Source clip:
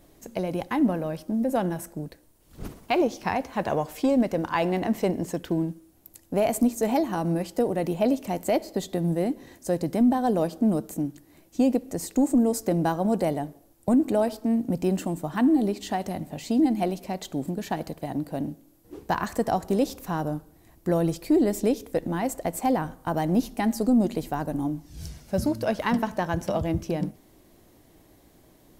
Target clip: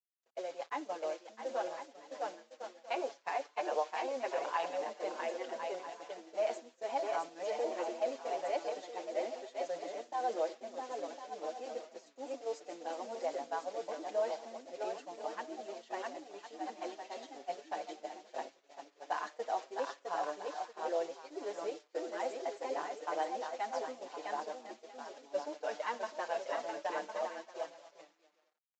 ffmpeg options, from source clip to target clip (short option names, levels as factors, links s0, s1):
-filter_complex "[0:a]asplit=2[s0][s1];[s1]aecho=0:1:660|1056|1294|1436|1522:0.631|0.398|0.251|0.158|0.1[s2];[s0][s2]amix=inputs=2:normalize=0,alimiter=limit=0.133:level=0:latency=1:release=27,aemphasis=mode=reproduction:type=50fm,acrusher=bits=6:mix=0:aa=0.000001,highpass=f=470:w=0.5412,highpass=f=470:w=1.3066,agate=range=0.0224:threshold=0.0398:ratio=3:detection=peak,aresample=16000,aresample=44100,asplit=2[s3][s4];[s4]adelay=6,afreqshift=0.77[s5];[s3][s5]amix=inputs=2:normalize=1,volume=0.708"